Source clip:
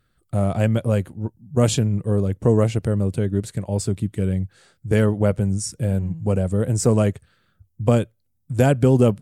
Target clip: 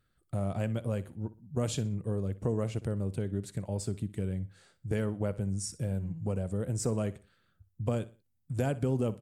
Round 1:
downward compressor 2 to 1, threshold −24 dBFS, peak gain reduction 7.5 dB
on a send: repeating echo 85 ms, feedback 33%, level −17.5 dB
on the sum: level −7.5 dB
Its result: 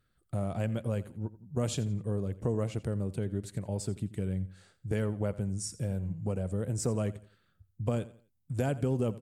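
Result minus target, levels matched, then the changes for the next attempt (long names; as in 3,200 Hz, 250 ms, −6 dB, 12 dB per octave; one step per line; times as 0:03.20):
echo 24 ms late
change: repeating echo 61 ms, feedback 33%, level −17.5 dB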